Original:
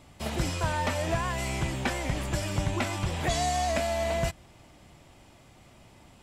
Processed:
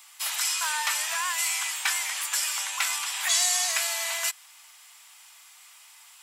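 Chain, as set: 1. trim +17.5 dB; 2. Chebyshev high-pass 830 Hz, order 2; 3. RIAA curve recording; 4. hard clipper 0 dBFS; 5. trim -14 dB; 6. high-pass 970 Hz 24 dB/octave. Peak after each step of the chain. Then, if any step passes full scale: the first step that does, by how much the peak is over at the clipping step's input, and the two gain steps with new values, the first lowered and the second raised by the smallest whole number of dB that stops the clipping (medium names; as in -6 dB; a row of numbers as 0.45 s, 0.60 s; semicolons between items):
+0.5 dBFS, +0.5 dBFS, +4.0 dBFS, 0.0 dBFS, -14.0 dBFS, -10.0 dBFS; step 1, 4.0 dB; step 1 +13.5 dB, step 5 -10 dB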